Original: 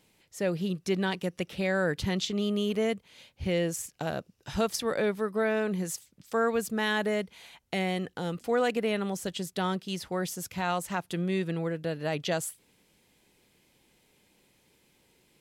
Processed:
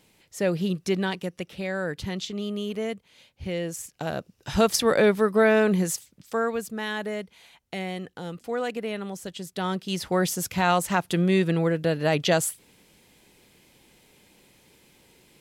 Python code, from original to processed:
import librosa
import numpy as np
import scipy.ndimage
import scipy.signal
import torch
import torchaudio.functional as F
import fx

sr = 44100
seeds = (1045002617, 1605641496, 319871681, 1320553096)

y = fx.gain(x, sr, db=fx.line((0.78, 4.5), (1.51, -2.0), (3.63, -2.0), (4.75, 8.5), (5.75, 8.5), (6.71, -2.5), (9.38, -2.5), (10.13, 8.0)))